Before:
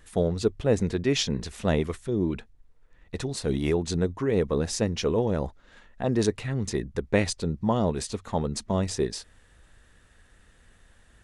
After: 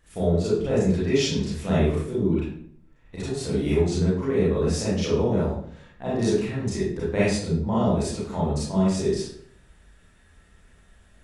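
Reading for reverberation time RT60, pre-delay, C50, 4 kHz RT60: 0.65 s, 29 ms, -1.0 dB, 0.45 s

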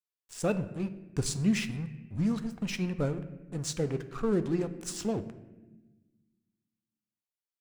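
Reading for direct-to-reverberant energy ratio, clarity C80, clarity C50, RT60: 9.5 dB, 15.0 dB, 13.0 dB, 1.1 s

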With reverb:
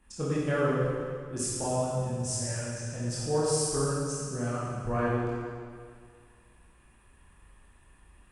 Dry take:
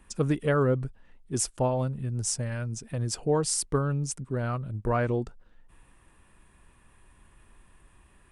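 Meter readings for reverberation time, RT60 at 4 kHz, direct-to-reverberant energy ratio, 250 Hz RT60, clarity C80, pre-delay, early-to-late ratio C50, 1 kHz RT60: 2.0 s, 1.9 s, -8.5 dB, 2.0 s, -1.0 dB, 18 ms, -3.0 dB, 2.0 s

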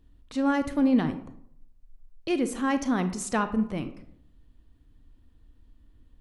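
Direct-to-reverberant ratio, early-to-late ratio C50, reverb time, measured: 9.5 dB, 11.5 dB, 0.65 s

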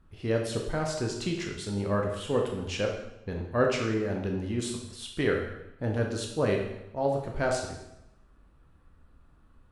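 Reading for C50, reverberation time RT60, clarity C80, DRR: 4.5 dB, 0.90 s, 7.0 dB, 0.5 dB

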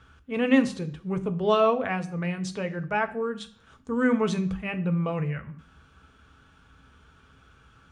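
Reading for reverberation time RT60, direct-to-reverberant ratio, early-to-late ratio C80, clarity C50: 0.55 s, 7.0 dB, 19.5 dB, 16.5 dB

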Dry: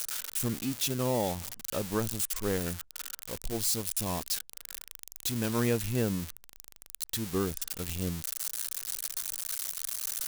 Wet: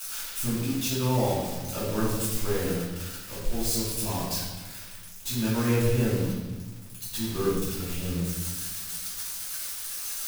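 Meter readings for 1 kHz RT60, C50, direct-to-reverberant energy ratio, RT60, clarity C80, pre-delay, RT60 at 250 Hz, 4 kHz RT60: 1.2 s, 0.0 dB, -12.5 dB, 1.3 s, 3.0 dB, 3 ms, 1.7 s, 1.0 s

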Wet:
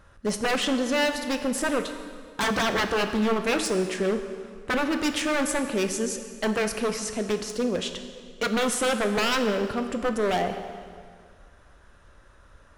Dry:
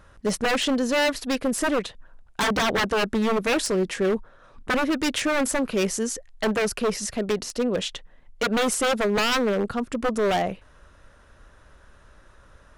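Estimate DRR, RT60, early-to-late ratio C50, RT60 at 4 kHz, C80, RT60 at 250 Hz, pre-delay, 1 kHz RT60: 6.5 dB, 2.0 s, 8.5 dB, 1.7 s, 9.0 dB, 2.0 s, 5 ms, 2.0 s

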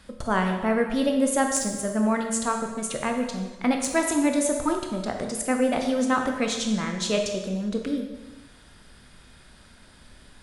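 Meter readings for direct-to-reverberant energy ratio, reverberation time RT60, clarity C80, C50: 3.0 dB, 1.1 s, 7.0 dB, 5.0 dB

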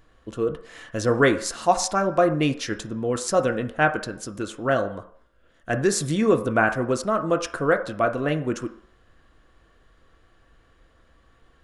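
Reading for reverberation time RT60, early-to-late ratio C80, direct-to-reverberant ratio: 0.60 s, 15.5 dB, 6.0 dB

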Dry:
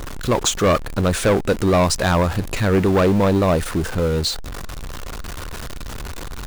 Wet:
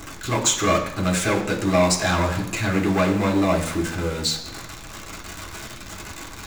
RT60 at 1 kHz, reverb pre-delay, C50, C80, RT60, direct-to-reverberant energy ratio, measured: 1.1 s, 3 ms, 8.5 dB, 11.0 dB, 1.1 s, -2.0 dB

